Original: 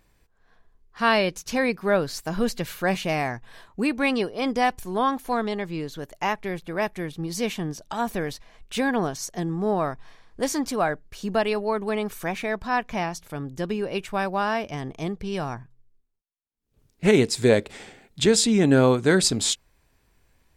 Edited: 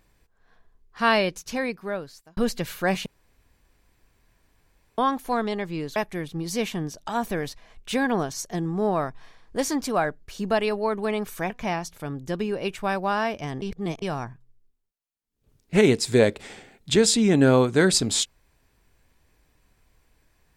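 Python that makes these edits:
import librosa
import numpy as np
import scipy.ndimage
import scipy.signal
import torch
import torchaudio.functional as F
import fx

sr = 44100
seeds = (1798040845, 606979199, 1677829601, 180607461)

y = fx.edit(x, sr, fx.fade_out_span(start_s=1.14, length_s=1.23),
    fx.room_tone_fill(start_s=3.06, length_s=1.92),
    fx.cut(start_s=5.96, length_s=0.84),
    fx.cut(start_s=12.34, length_s=0.46),
    fx.reverse_span(start_s=14.92, length_s=0.4), tone=tone)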